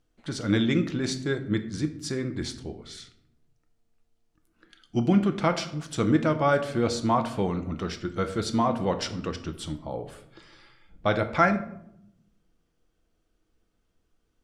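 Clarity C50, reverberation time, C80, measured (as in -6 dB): 13.0 dB, 0.75 s, 15.5 dB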